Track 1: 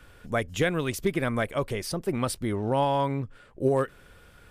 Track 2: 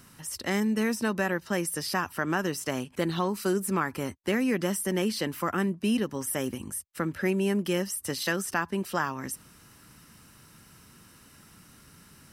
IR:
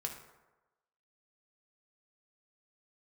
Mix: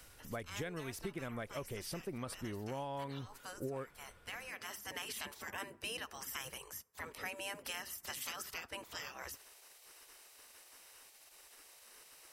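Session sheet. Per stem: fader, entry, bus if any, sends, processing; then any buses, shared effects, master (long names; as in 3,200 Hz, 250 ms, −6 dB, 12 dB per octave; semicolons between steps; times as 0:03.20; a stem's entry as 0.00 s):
−10.0 dB, 0.00 s, no send, no processing
−1.5 dB, 0.00 s, send −18 dB, gate on every frequency bin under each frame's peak −15 dB weak; automatic ducking −11 dB, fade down 0.35 s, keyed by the first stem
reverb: on, RT60 1.1 s, pre-delay 3 ms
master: downward compressor 4 to 1, threshold −39 dBFS, peak gain reduction 9 dB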